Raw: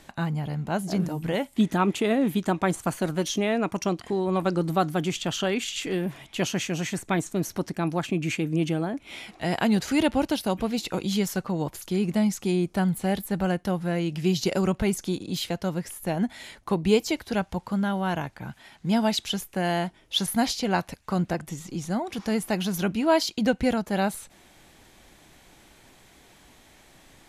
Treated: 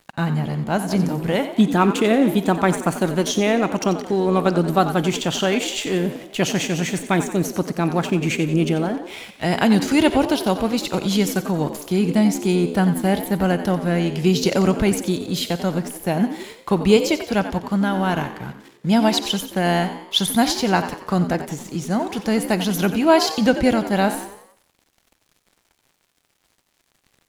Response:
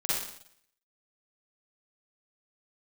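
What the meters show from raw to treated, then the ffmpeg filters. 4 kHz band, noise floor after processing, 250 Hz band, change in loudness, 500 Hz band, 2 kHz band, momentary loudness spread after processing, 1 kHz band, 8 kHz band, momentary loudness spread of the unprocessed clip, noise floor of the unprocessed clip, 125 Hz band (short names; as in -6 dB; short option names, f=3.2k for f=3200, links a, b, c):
+6.5 dB, -67 dBFS, +6.5 dB, +6.5 dB, +6.5 dB, +6.5 dB, 7 LU, +7.0 dB, +6.0 dB, 7 LU, -56 dBFS, +6.0 dB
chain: -filter_complex "[0:a]aeval=exprs='sgn(val(0))*max(abs(val(0))-0.00376,0)':c=same,asplit=6[a][b][c][d][e][f];[b]adelay=90,afreqshift=70,volume=-12dB[g];[c]adelay=180,afreqshift=140,volume=-18.7dB[h];[d]adelay=270,afreqshift=210,volume=-25.5dB[i];[e]adelay=360,afreqshift=280,volume=-32.2dB[j];[f]adelay=450,afreqshift=350,volume=-39dB[k];[a][g][h][i][j][k]amix=inputs=6:normalize=0,asplit=2[l][m];[1:a]atrim=start_sample=2205[n];[m][n]afir=irnorm=-1:irlink=0,volume=-23.5dB[o];[l][o]amix=inputs=2:normalize=0,volume=6dB"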